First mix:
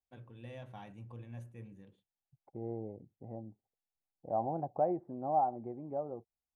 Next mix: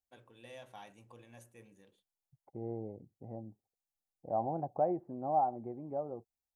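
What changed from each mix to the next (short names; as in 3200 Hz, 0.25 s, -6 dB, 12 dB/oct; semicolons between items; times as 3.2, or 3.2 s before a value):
first voice: add tone controls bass -15 dB, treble +11 dB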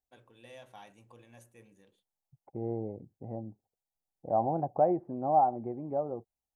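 second voice +5.5 dB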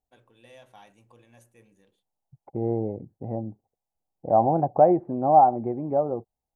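second voice +8.5 dB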